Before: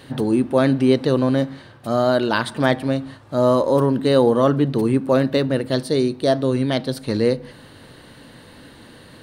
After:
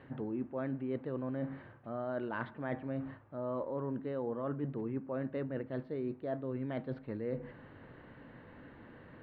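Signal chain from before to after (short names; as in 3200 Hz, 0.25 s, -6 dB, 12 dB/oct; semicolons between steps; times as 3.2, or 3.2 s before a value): LPF 2200 Hz 24 dB/oct; reverse; compressor 5:1, threshold -26 dBFS, peak gain reduction 14 dB; reverse; gain -9 dB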